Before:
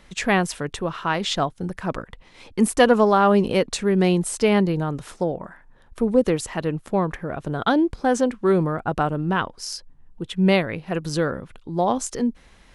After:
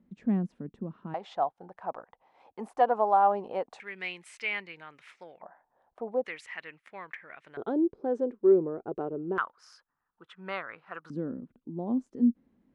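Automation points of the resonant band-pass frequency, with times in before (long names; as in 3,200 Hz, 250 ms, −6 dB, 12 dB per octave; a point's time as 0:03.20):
resonant band-pass, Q 4.2
220 Hz
from 0:01.14 780 Hz
from 0:03.80 2,200 Hz
from 0:05.42 730 Hz
from 0:06.26 2,100 Hz
from 0:07.57 400 Hz
from 0:09.38 1,300 Hz
from 0:11.10 250 Hz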